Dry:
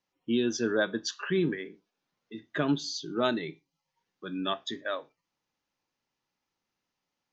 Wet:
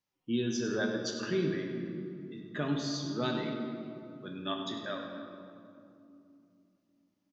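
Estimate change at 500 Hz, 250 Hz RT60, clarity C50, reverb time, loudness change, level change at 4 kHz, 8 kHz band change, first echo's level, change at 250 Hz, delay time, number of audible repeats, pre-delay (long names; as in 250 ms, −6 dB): −3.5 dB, 4.4 s, 3.0 dB, 2.7 s, −4.5 dB, −3.5 dB, can't be measured, −10.0 dB, −2.0 dB, 99 ms, 1, 8 ms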